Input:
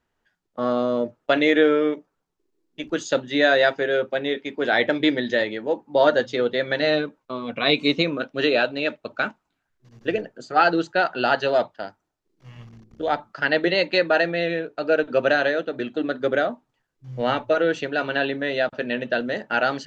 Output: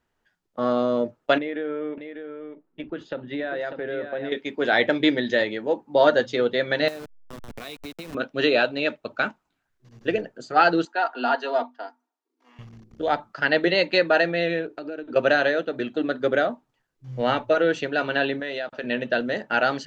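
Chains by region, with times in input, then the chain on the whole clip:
0:01.38–0:04.32: high-frequency loss of the air 420 metres + downward compressor 4 to 1, threshold −27 dBFS + single-tap delay 596 ms −8 dB
0:06.88–0:08.15: hold until the input has moved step −22.5 dBFS + downward compressor 16 to 1, threshold −32 dBFS + multiband upward and downward expander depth 100%
0:10.85–0:12.59: Chebyshev high-pass with heavy ripple 240 Hz, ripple 9 dB + comb filter 4.3 ms, depth 64%
0:14.66–0:15.16: parametric band 330 Hz +11 dB 0.5 octaves + downward compressor, threshold −31 dBFS
0:18.40–0:18.84: low-shelf EQ 190 Hz −11.5 dB + downward compressor 4 to 1, threshold −26 dBFS
whole clip: no processing

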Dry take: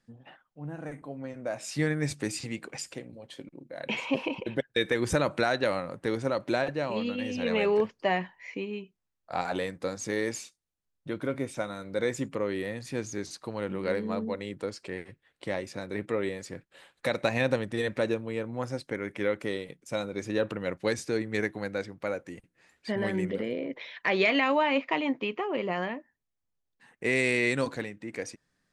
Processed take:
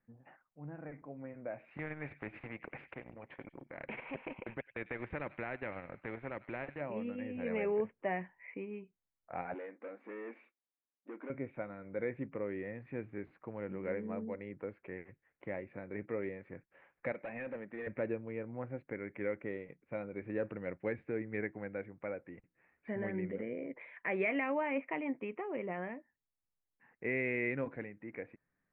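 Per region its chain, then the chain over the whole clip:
0:01.77–0:06.81: transient designer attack −2 dB, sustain −12 dB + delay with a high-pass on its return 98 ms, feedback 44%, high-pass 3,200 Hz, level −16 dB + every bin compressed towards the loudest bin 2 to 1
0:09.54–0:11.30: hard clipping −33 dBFS + linear-phase brick-wall high-pass 210 Hz
0:17.12–0:17.87: high-pass with resonance 190 Hz, resonance Q 1.5 + low-shelf EQ 400 Hz −10.5 dB + hard clipping −29 dBFS
whole clip: elliptic low-pass filter 2,300 Hz, stop band 60 dB; dynamic equaliser 1,100 Hz, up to −6 dB, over −47 dBFS, Q 1.6; level −7 dB

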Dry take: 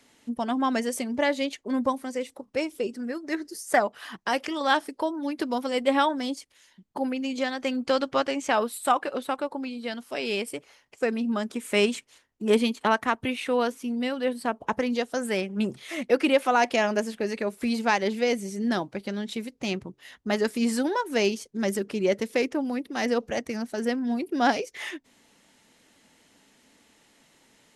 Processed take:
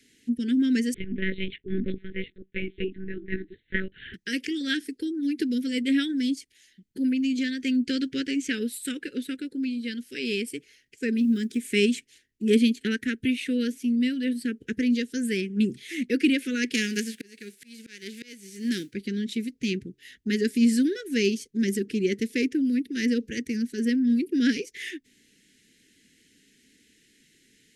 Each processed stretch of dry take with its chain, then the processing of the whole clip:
0:00.94–0:04.14: mid-hump overdrive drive 9 dB, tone 1,700 Hz, clips at −9 dBFS + one-pitch LPC vocoder at 8 kHz 190 Hz
0:11.17–0:11.66: one scale factor per block 7 bits + notch filter 2,800 Hz, Q 28
0:16.73–0:18.91: spectral envelope flattened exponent 0.6 + Bessel high-pass filter 260 Hz + volume swells 619 ms
whole clip: inverse Chebyshev band-stop filter 600–1,200 Hz, stop band 40 dB; dynamic equaliser 250 Hz, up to +6 dB, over −41 dBFS, Q 2.4

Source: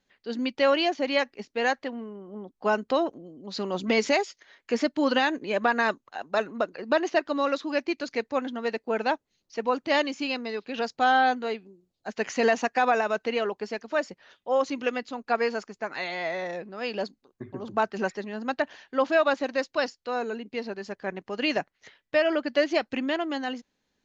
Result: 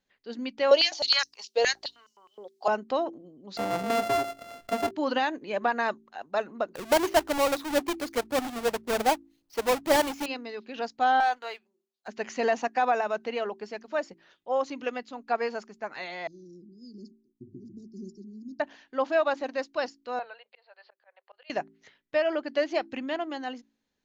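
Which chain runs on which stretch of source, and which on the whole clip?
0:00.71–0:02.68: high shelf with overshoot 3,100 Hz +13.5 dB, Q 1.5 + high-pass on a step sequencer 9.6 Hz 510–5,500 Hz
0:03.57–0:04.91: samples sorted by size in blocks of 64 samples + high-shelf EQ 3,600 Hz −7.5 dB + envelope flattener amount 50%
0:06.75–0:10.26: each half-wave held at its own peak + phase shifter 1.9 Hz, delay 2.9 ms, feedback 26%
0:11.20–0:12.08: high-pass filter 820 Hz + leveller curve on the samples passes 1
0:16.27–0:18.60: Chebyshev band-stop filter 360–5,000 Hz, order 5 + high-frequency loss of the air 90 metres
0:20.19–0:21.50: Chebyshev band-pass filter 520–4,500 Hz, order 5 + volume swells 476 ms
whole clip: hum removal 55.58 Hz, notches 7; dynamic equaliser 770 Hz, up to +5 dB, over −35 dBFS, Q 1.5; level −5.5 dB

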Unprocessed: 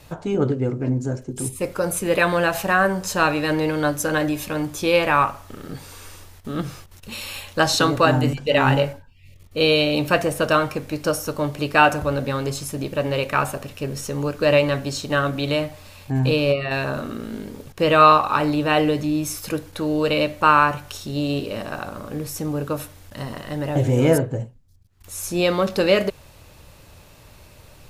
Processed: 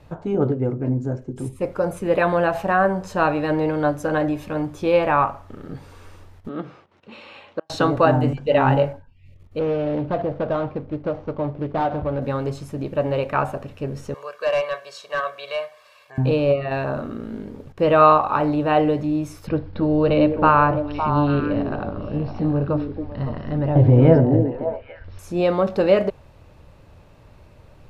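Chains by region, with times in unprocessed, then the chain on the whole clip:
0:06.49–0:07.70: notch filter 1,700 Hz, Q 21 + gate with flip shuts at −14 dBFS, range −42 dB + band-pass filter 260–3,500 Hz
0:09.59–0:12.22: running median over 25 samples + low-pass filter 5,200 Hz 24 dB per octave + downward compressor 3 to 1, threshold −20 dBFS
0:14.14–0:16.18: high-pass filter 970 Hz + comb filter 1.8 ms, depth 88% + hard clipping −16.5 dBFS
0:19.47–0:25.19: Butterworth low-pass 5,200 Hz 72 dB per octave + low-shelf EQ 170 Hz +11 dB + echo through a band-pass that steps 279 ms, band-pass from 300 Hz, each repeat 1.4 octaves, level −2 dB
whole clip: low-pass filter 1,100 Hz 6 dB per octave; dynamic equaliser 740 Hz, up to +5 dB, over −33 dBFS, Q 1.6

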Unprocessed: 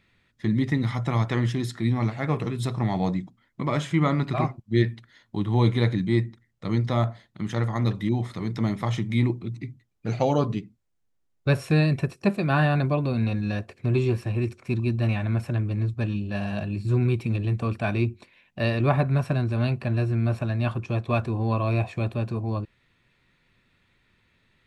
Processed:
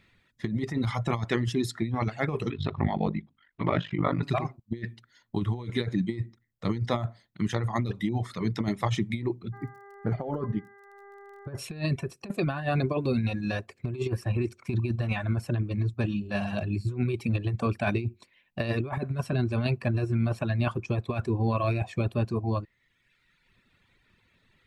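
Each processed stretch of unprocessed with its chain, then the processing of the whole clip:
0:02.50–0:04.23: low-pass filter 3,600 Hz 24 dB per octave + ring modulation 25 Hz + one half of a high-frequency compander encoder only
0:09.52–0:11.57: Savitzky-Golay smoothing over 41 samples + hum with harmonics 400 Hz, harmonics 5, −46 dBFS −5 dB per octave + surface crackle 34 per second −50 dBFS
whole clip: reverb reduction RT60 1.2 s; dynamic equaliser 400 Hz, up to +5 dB, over −43 dBFS, Q 6.1; compressor whose output falls as the input rises −26 dBFS, ratio −0.5

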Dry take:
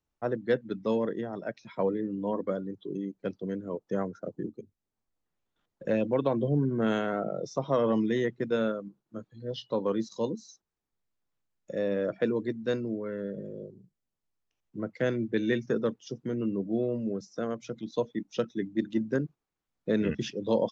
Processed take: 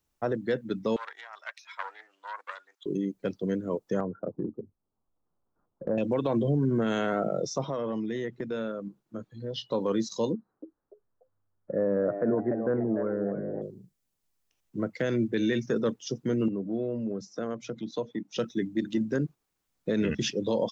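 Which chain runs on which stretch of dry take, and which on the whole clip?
0:00.96–0:02.86: phase distortion by the signal itself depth 0.21 ms + high-pass filter 1,100 Hz 24 dB per octave + high-shelf EQ 4,800 Hz −5.5 dB
0:04.00–0:05.98: Butterworth low-pass 1,300 Hz + downward compressor 2 to 1, threshold −32 dBFS
0:07.65–0:09.71: high-shelf EQ 4,600 Hz −8 dB + downward compressor 3 to 1, threshold −36 dBFS
0:10.33–0:13.62: Butterworth low-pass 1,500 Hz + echo with shifted repeats 292 ms, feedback 31%, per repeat +98 Hz, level −10.5 dB
0:16.48–0:18.36: high-pass filter 98 Hz 24 dB per octave + high-shelf EQ 4,300 Hz −10 dB + downward compressor 2 to 1, threshold −36 dBFS
whole clip: high-shelf EQ 4,700 Hz +8 dB; brickwall limiter −22.5 dBFS; level +4.5 dB

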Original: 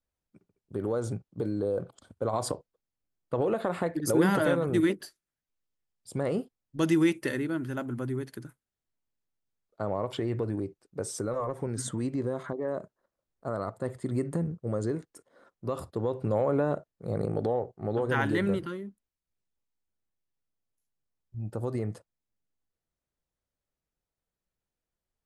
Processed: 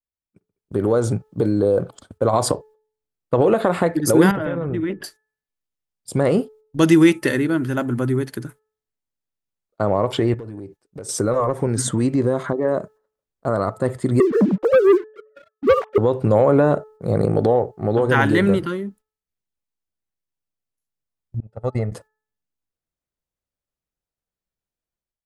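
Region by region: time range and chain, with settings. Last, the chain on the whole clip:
0:04.31–0:05.04: Savitzky-Golay smoothing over 25 samples + low-shelf EQ 130 Hz +10.5 dB + downward compressor 4 to 1, threshold −32 dBFS
0:10.34–0:11.09: downward compressor 4 to 1, threshold −44 dBFS + hard clipping −37 dBFS
0:14.20–0:15.98: three sine waves on the formant tracks + leveller curve on the samples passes 2
0:21.40–0:21.92: noise gate −31 dBFS, range −29 dB + high-frequency loss of the air 85 metres + comb filter 1.5 ms, depth 59%
whole clip: noise gate −55 dBFS, range −14 dB; hum removal 432.2 Hz, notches 4; automatic gain control gain up to 11 dB; level +1 dB

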